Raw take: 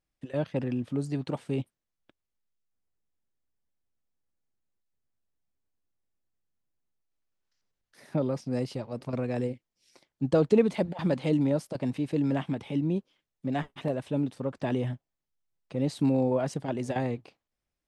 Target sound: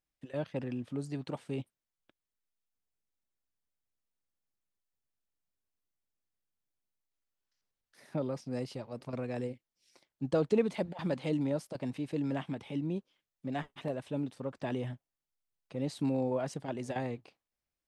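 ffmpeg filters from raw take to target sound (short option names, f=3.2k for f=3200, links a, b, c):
-af "lowshelf=f=480:g=-3.5,volume=-4dB"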